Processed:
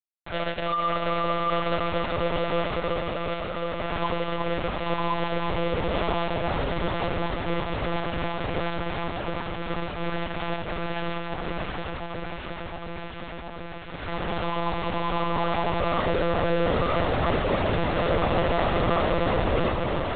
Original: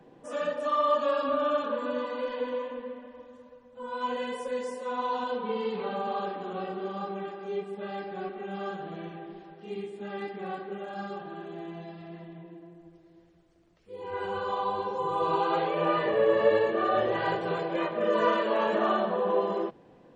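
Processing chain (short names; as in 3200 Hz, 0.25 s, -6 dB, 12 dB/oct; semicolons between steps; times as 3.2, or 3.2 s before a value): high shelf 2600 Hz -7 dB; in parallel at -1 dB: compressor 10:1, threshold -36 dBFS, peak gain reduction 18.5 dB; on the sum: hard clip -22 dBFS, distortion -13 dB; bit-crush 5-bit; on a send: echo with dull and thin repeats by turns 0.357 s, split 1200 Hz, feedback 90%, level -3.5 dB; on the sum: monotone LPC vocoder at 8 kHz 170 Hz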